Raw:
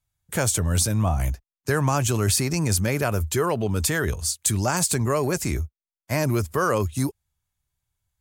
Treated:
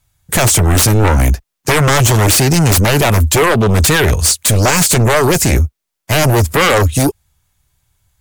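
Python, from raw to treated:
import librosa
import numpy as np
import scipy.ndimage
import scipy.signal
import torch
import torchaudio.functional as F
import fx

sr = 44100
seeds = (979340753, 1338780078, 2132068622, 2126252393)

y = fx.fold_sine(x, sr, drive_db=14, ceiling_db=-7.0)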